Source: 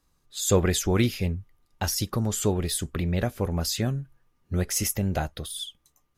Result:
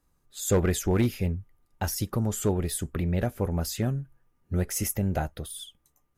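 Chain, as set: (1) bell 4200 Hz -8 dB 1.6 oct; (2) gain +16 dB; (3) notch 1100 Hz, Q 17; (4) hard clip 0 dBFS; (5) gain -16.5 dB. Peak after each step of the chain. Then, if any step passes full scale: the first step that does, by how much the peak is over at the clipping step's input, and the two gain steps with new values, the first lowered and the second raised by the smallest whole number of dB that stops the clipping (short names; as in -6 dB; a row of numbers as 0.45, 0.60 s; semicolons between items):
-9.5, +6.5, +6.5, 0.0, -16.5 dBFS; step 2, 6.5 dB; step 2 +9 dB, step 5 -9.5 dB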